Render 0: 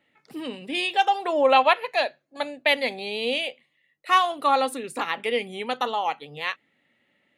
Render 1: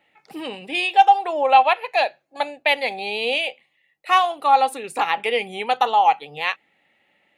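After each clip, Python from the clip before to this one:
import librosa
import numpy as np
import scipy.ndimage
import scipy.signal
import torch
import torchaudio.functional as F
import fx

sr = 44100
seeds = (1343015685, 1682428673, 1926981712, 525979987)

y = fx.rider(x, sr, range_db=3, speed_s=0.5)
y = fx.graphic_eq_31(y, sr, hz=(125, 250, 800, 2500), db=(-10, -8, 10, 5))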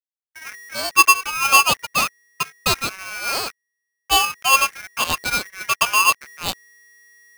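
y = fx.env_lowpass(x, sr, base_hz=490.0, full_db=-14.5)
y = fx.backlash(y, sr, play_db=-25.0)
y = y * np.sign(np.sin(2.0 * np.pi * 1900.0 * np.arange(len(y)) / sr))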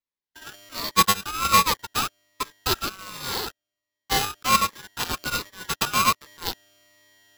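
y = fx.fixed_phaser(x, sr, hz=640.0, stages=6)
y = fx.sample_hold(y, sr, seeds[0], rate_hz=8900.0, jitter_pct=0)
y = fx.notch_cascade(y, sr, direction='falling', hz=1.3)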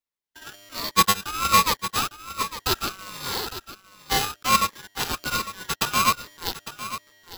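y = x + 10.0 ** (-12.5 / 20.0) * np.pad(x, (int(854 * sr / 1000.0), 0))[:len(x)]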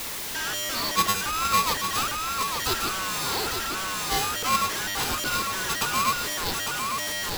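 y = x + 0.5 * 10.0 ** (-16.5 / 20.0) * np.sign(x)
y = y * 10.0 ** (-7.5 / 20.0)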